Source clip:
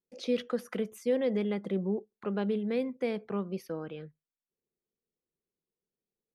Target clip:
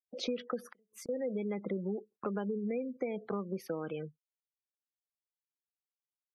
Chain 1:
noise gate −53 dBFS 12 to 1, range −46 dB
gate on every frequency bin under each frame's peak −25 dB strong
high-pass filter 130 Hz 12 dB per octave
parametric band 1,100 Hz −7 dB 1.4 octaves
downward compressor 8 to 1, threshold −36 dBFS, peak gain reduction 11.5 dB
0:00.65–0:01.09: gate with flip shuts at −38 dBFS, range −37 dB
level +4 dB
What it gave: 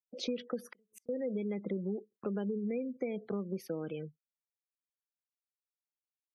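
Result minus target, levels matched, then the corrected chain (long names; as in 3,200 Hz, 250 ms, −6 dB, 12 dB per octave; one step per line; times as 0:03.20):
1,000 Hz band −6.5 dB
noise gate −53 dBFS 12 to 1, range −46 dB
gate on every frequency bin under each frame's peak −25 dB strong
high-pass filter 130 Hz 12 dB per octave
parametric band 1,100 Hz +3.5 dB 1.4 octaves
downward compressor 8 to 1, threshold −36 dBFS, peak gain reduction 13.5 dB
0:00.65–0:01.09: gate with flip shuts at −38 dBFS, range −37 dB
level +4 dB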